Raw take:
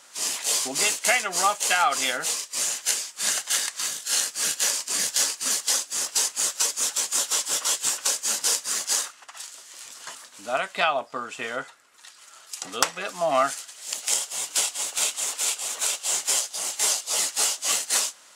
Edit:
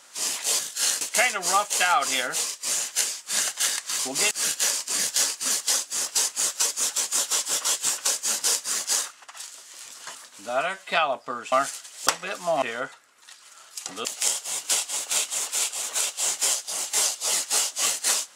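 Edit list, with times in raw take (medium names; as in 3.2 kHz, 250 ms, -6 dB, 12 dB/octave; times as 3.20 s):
0.59–0.91 s: swap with 3.89–4.31 s
10.49–10.77 s: stretch 1.5×
11.38–12.81 s: swap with 13.36–13.91 s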